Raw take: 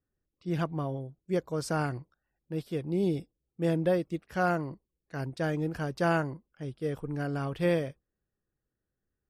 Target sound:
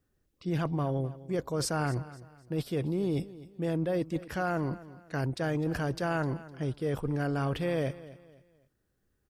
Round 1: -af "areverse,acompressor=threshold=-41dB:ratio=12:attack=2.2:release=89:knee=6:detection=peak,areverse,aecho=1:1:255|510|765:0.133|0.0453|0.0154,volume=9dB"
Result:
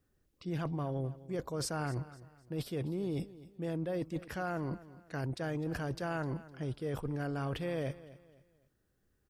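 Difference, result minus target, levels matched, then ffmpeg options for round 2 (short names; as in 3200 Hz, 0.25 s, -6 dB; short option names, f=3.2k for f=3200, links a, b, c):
compressor: peak gain reduction +6 dB
-af "areverse,acompressor=threshold=-34.5dB:ratio=12:attack=2.2:release=89:knee=6:detection=peak,areverse,aecho=1:1:255|510|765:0.133|0.0453|0.0154,volume=9dB"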